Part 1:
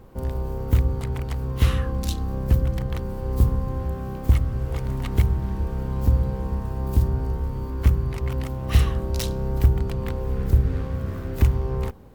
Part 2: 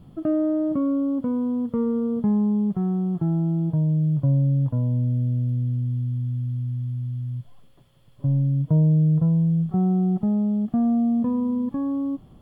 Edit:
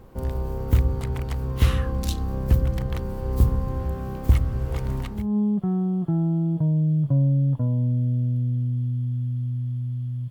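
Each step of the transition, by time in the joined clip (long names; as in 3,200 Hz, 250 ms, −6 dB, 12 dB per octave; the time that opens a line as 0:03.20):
part 1
0:05.18: continue with part 2 from 0:02.31, crossfade 0.38 s quadratic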